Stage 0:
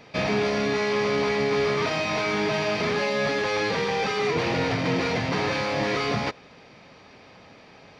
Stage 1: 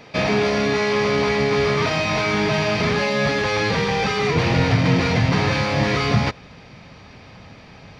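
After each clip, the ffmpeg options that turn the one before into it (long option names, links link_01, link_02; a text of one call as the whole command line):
ffmpeg -i in.wav -af "asubboost=boost=3.5:cutoff=180,volume=5dB" out.wav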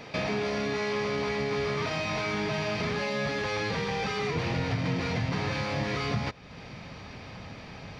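ffmpeg -i in.wav -af "acompressor=threshold=-36dB:ratio=2" out.wav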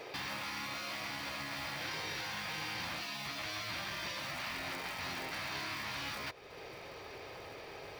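ffmpeg -i in.wav -af "acrusher=bits=5:mode=log:mix=0:aa=0.000001,lowshelf=frequency=290:width_type=q:width=3:gain=-9,afftfilt=real='re*lt(hypot(re,im),0.0631)':imag='im*lt(hypot(re,im),0.0631)':win_size=1024:overlap=0.75,volume=-3.5dB" out.wav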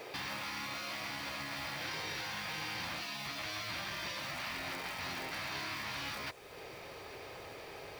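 ffmpeg -i in.wav -af "acrusher=bits=9:mix=0:aa=0.000001" out.wav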